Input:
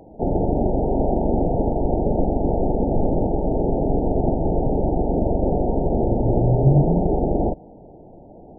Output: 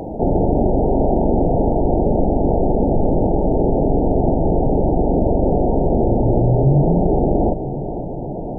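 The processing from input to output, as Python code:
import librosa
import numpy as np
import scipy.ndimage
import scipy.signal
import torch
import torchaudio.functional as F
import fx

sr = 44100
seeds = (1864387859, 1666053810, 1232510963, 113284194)

y = fx.echo_feedback(x, sr, ms=504, feedback_pct=52, wet_db=-20.5)
y = fx.env_flatten(y, sr, amount_pct=50)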